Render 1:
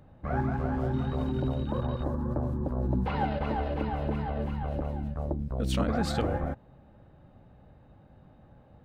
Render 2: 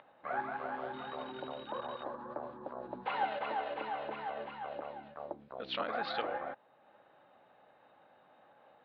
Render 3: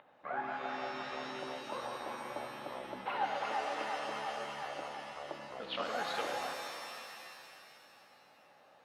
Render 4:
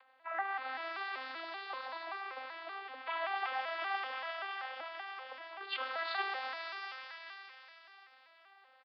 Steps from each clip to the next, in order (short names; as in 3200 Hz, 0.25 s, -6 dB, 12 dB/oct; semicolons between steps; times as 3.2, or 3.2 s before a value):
steep low-pass 4100 Hz 48 dB/oct; upward compressor, threshold -45 dBFS; HPF 700 Hz 12 dB/oct
shimmer reverb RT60 2.5 s, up +7 st, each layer -2 dB, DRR 5 dB; gain -2 dB
arpeggiated vocoder major triad, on C4, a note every 0.192 s; Butterworth band-pass 3000 Hz, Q 0.52; downsampling 11025 Hz; gain +9 dB